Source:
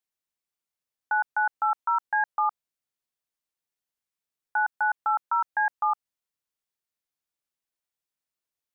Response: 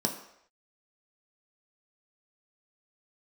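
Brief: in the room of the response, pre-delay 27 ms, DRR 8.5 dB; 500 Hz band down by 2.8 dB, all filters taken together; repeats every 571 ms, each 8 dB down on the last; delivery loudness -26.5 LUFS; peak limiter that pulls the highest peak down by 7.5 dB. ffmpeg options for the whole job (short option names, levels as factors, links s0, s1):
-filter_complex "[0:a]equalizer=f=500:t=o:g=-4.5,alimiter=level_in=1.12:limit=0.0631:level=0:latency=1,volume=0.891,aecho=1:1:571|1142|1713|2284|2855:0.398|0.159|0.0637|0.0255|0.0102,asplit=2[s0][s1];[1:a]atrim=start_sample=2205,adelay=27[s2];[s1][s2]afir=irnorm=-1:irlink=0,volume=0.178[s3];[s0][s3]amix=inputs=2:normalize=0,volume=2.24"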